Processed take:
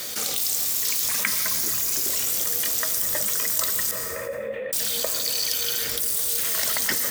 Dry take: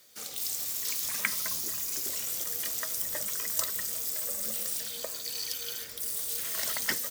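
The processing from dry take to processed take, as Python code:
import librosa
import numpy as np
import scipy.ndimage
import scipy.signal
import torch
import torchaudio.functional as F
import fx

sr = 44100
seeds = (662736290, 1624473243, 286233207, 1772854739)

y = fx.formant_cascade(x, sr, vowel='e', at=(3.91, 4.73))
y = fx.rev_plate(y, sr, seeds[0], rt60_s=2.2, hf_ratio=0.35, predelay_ms=105, drr_db=12.0)
y = fx.env_flatten(y, sr, amount_pct=70)
y = F.gain(torch.from_numpy(y), 3.5).numpy()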